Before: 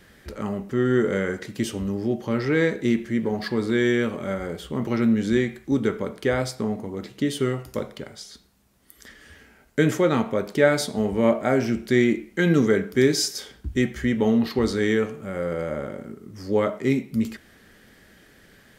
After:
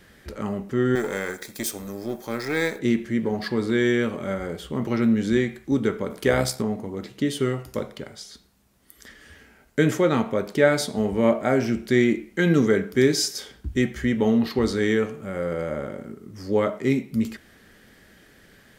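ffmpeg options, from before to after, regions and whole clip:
ffmpeg -i in.wav -filter_complex "[0:a]asettb=1/sr,asplit=3[link_01][link_02][link_03];[link_01]atrim=end=0.954[link_04];[link_02]atrim=start=0.95:end=2.79,asetpts=PTS-STARTPTS,afade=type=in:duration=0.004:curve=qsin,afade=type=out:start_time=1.836:duration=0.004:curve=qsin,aeval=exprs='if(lt(val(0),0),0.447*val(0),val(0))':channel_layout=same,asuperstop=centerf=2900:order=4:qfactor=6.7,aemphasis=mode=production:type=bsi[link_05];[link_03]atrim=start=2.786[link_06];[link_04][link_05]acrossfade=duration=0.004:curve1=hsin:curve2=qsin[link_07];[link_07][link_06]acrossfade=duration=0.004:curve1=qsin:curve2=hsin,asettb=1/sr,asplit=3[link_08][link_09][link_10];[link_08]atrim=end=6.104[link_11];[link_09]atrim=start=6.1:end=6.62,asetpts=PTS-STARTPTS,afade=type=in:duration=0.004:curve=qsin,afade=type=out:start_time=0.516:duration=0.004:curve=qsin,highshelf=frequency=7600:gain=10,acontrast=27,tremolo=f=68:d=0.571[link_12];[link_10]atrim=start=6.616[link_13];[link_11][link_12]acrossfade=duration=0.004:curve1=hsin:curve2=qsin[link_14];[link_14][link_13]acrossfade=duration=0.004:curve1=qsin:curve2=hsin" out.wav

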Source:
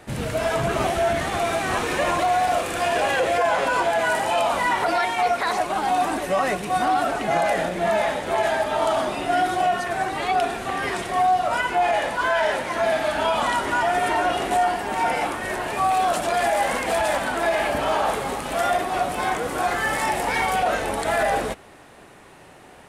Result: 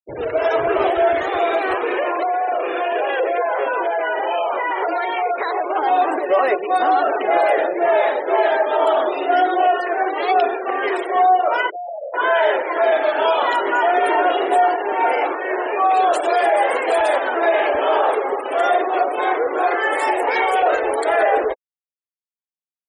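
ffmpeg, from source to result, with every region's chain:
ffmpeg -i in.wav -filter_complex "[0:a]asettb=1/sr,asplit=3[link_01][link_02][link_03];[link_01]atrim=end=1.734[link_04];[link_02]atrim=start=1.73:end=5.75,asetpts=PTS-STARTPTS,afade=type=in:duration=0.004:curve=qsin,afade=type=out:start_time=4.016:duration=0.004:curve=qsin,lowpass=frequency=4300:width=0.5412,lowpass=frequency=4300:width=1.3066,acompressor=threshold=-22dB:ratio=4:attack=3.2:release=140:knee=1:detection=peak[link_05];[link_03]atrim=start=5.746[link_06];[link_04][link_05]acrossfade=duration=0.004:curve1=hsin:curve2=qsin[link_07];[link_07][link_06]acrossfade=duration=0.004:curve1=qsin:curve2=hsin,asettb=1/sr,asplit=3[link_08][link_09][link_10];[link_08]atrim=end=11.704[link_11];[link_09]atrim=start=11.7:end=12.14,asetpts=PTS-STARTPTS,afade=type=in:duration=0.004:curve=qsin,afade=type=out:start_time=0.436:duration=0.004:curve=qsin,bandpass=frequency=570:width_type=q:width=5.1,acompressor=threshold=-30dB:ratio=16:attack=3.2:release=140:knee=1:detection=peak[link_12];[link_10]atrim=start=12.136[link_13];[link_11][link_12]acrossfade=duration=0.004:curve1=hsin:curve2=qsin[link_14];[link_14][link_13]acrossfade=duration=0.004:curve1=qsin:curve2=hsin,anlmdn=3.98,lowshelf=frequency=280:width_type=q:width=3:gain=-11.5,afftfilt=real='re*gte(hypot(re,im),0.0355)':imag='im*gte(hypot(re,im),0.0355)':win_size=1024:overlap=0.75,volume=3dB" out.wav

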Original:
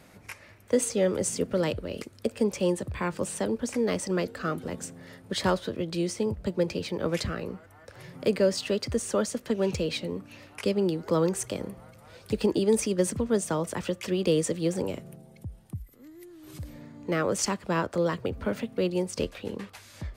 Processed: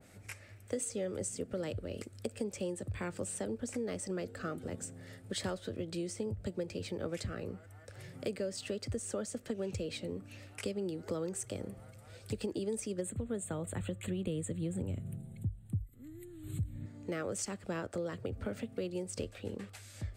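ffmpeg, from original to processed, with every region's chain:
ffmpeg -i in.wav -filter_complex "[0:a]asettb=1/sr,asplit=3[link_01][link_02][link_03];[link_01]atrim=end=13.014[link_04];[link_02]atrim=start=13.01:end=16.86,asetpts=PTS-STARTPTS,afade=type=in:duration=0.004:curve=qsin,afade=type=out:start_time=3.846:duration=0.004:curve=qsin,asubboost=boost=8.5:cutoff=200,asuperstop=centerf=5400:order=8:qfactor=2.1[link_05];[link_03]atrim=start=16.856[link_06];[link_04][link_05]acrossfade=duration=0.004:curve1=hsin:curve2=qsin[link_07];[link_07][link_06]acrossfade=duration=0.004:curve1=qsin:curve2=hsin,equalizer=frequency=100:width_type=o:width=0.33:gain=10,equalizer=frequency=160:width_type=o:width=0.33:gain=-3,equalizer=frequency=1000:width_type=o:width=0.33:gain=-10,equalizer=frequency=8000:width_type=o:width=0.33:gain=9,acompressor=threshold=-29dB:ratio=4,adynamicequalizer=threshold=0.00398:dfrequency=1800:dqfactor=0.7:tfrequency=1800:tqfactor=0.7:attack=5:release=100:ratio=0.375:range=2:mode=cutabove:tftype=highshelf,volume=-5dB" out.wav

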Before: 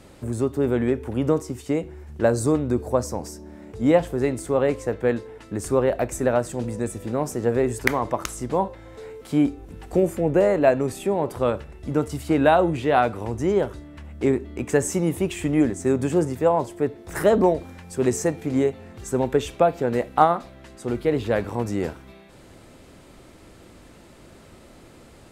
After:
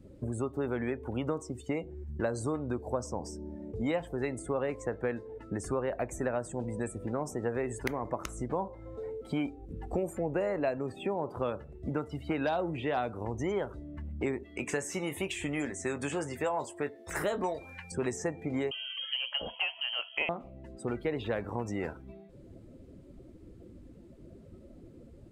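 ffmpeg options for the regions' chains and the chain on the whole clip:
ffmpeg -i in.wav -filter_complex "[0:a]asettb=1/sr,asplit=3[link_01][link_02][link_03];[link_01]atrim=end=10.784[link_04];[link_02]atrim=start=10.78:end=12.97,asetpts=PTS-STARTPTS,afade=type=in:duration=0.004:curve=qsin,afade=type=out:start_time=2.186:duration=0.004:curve=qsin,acrossover=split=4200[link_05][link_06];[link_06]acompressor=threshold=-48dB:ratio=4:attack=1:release=60[link_07];[link_05][link_07]amix=inputs=2:normalize=0,asoftclip=type=hard:threshold=-9.5dB,highpass=72[link_08];[link_03]atrim=start=12.966[link_09];[link_04][link_08]acrossfade=duration=0.004:curve1=hsin:curve2=qsin[link_10];[link_10][link_09]acrossfade=duration=0.004:curve1=qsin:curve2=hsin,asettb=1/sr,asplit=3[link_11][link_12][link_13];[link_11]atrim=end=14.434[link_14];[link_12]atrim=start=14.43:end=17.92,asetpts=PTS-STARTPTS,afade=type=in:duration=0.004:curve=qsin,afade=type=out:start_time=3.486:duration=0.004:curve=qsin,tiltshelf=frequency=810:gain=-8,asplit=2[link_15][link_16];[link_16]adelay=21,volume=-10dB[link_17];[link_15][link_17]amix=inputs=2:normalize=0,atrim=end_sample=153909[link_18];[link_13]atrim=start=17.916[link_19];[link_14][link_18]acrossfade=duration=0.004:curve1=hsin:curve2=qsin[link_20];[link_20][link_19]acrossfade=duration=0.004:curve1=qsin:curve2=hsin,asettb=1/sr,asplit=3[link_21][link_22][link_23];[link_21]atrim=end=18.714[link_24];[link_22]atrim=start=18.71:end=20.29,asetpts=PTS-STARTPTS,afade=type=in:duration=0.004:curve=qsin,afade=type=out:start_time=1.576:duration=0.004:curve=qsin,acontrast=59,lowpass=frequency=2800:width_type=q:width=0.5098,lowpass=frequency=2800:width_type=q:width=0.6013,lowpass=frequency=2800:width_type=q:width=0.9,lowpass=frequency=2800:width_type=q:width=2.563,afreqshift=-3300[link_25];[link_23]atrim=start=20.286[link_26];[link_24][link_25]acrossfade=duration=0.004:curve1=hsin:curve2=qsin[link_27];[link_27][link_26]acrossfade=duration=0.004:curve1=qsin:curve2=hsin,afftdn=noise_reduction=21:noise_floor=-41,acrossover=split=810|4600[link_28][link_29][link_30];[link_28]acompressor=threshold=-33dB:ratio=4[link_31];[link_29]acompressor=threshold=-39dB:ratio=4[link_32];[link_30]acompressor=threshold=-48dB:ratio=4[link_33];[link_31][link_32][link_33]amix=inputs=3:normalize=0" out.wav

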